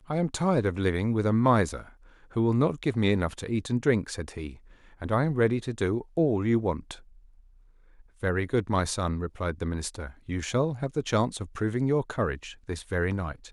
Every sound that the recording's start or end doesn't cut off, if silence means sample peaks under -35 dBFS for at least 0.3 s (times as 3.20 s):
2.36–4.51 s
5.02–6.94 s